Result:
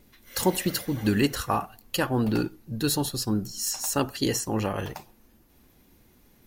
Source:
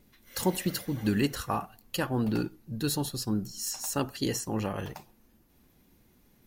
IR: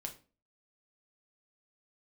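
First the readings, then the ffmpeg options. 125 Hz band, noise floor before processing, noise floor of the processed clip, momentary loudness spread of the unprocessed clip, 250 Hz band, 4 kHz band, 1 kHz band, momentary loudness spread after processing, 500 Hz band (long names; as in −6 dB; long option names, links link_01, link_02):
+3.0 dB, −64 dBFS, −60 dBFS, 8 LU, +3.5 dB, +5.0 dB, +5.0 dB, 7 LU, +4.5 dB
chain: -af "equalizer=frequency=170:width=1.6:gain=-3.5,volume=5dB"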